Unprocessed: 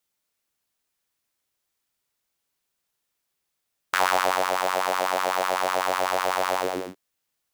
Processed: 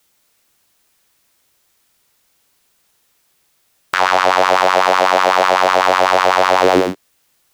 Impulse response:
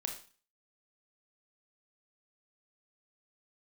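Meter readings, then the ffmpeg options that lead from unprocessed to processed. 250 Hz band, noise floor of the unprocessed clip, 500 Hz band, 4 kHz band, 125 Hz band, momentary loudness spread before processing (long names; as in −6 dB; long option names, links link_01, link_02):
+15.0 dB, −80 dBFS, +12.5 dB, +10.5 dB, can't be measured, 6 LU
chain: -filter_complex "[0:a]acrossover=split=460|6300[link_01][link_02][link_03];[link_03]acompressor=threshold=-54dB:ratio=5[link_04];[link_01][link_02][link_04]amix=inputs=3:normalize=0,alimiter=level_in=19dB:limit=-1dB:release=50:level=0:latency=1,volume=-1dB"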